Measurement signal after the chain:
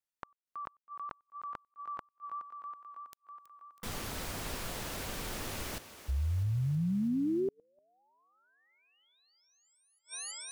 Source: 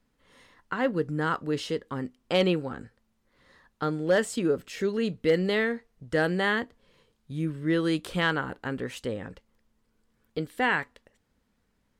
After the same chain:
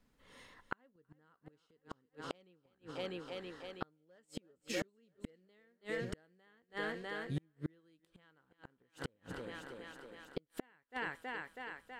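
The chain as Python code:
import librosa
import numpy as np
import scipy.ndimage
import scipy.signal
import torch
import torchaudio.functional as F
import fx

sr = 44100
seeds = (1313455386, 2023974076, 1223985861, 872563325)

y = fx.vibrato(x, sr, rate_hz=8.4, depth_cents=16.0)
y = fx.echo_thinned(y, sr, ms=324, feedback_pct=69, hz=160.0, wet_db=-13.5)
y = fx.gate_flip(y, sr, shuts_db=-24.0, range_db=-41)
y = y * 10.0 ** (-1.5 / 20.0)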